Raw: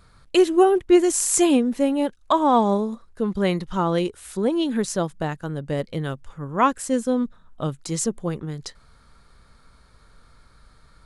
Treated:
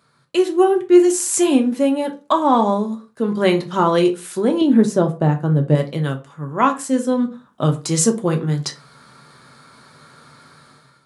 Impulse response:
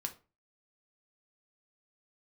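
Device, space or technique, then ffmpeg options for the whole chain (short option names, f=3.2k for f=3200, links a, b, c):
far laptop microphone: -filter_complex "[0:a]asettb=1/sr,asplit=3[a][b][c];[a]atrim=end=4.614[d];[b]atrim=start=4.61:end=5.75,asetpts=PTS-STARTPTS,afade=t=in:d=0.004:c=qsin,afade=t=out:st=1.136:d=0.004:c=qsin,tiltshelf=f=970:g=7.5[e];[c]atrim=start=5.746[f];[d][e]acrossfade=d=0.004:c1=hsin:c2=qsin[g];[g][f]acrossfade=d=0.004:c1=qsin:c2=hsin[h];[1:a]atrim=start_sample=2205[i];[h][i]afir=irnorm=-1:irlink=0,highpass=f=130:w=0.5412,highpass=f=130:w=1.3066,dynaudnorm=f=210:g=5:m=14dB,volume=-1.5dB"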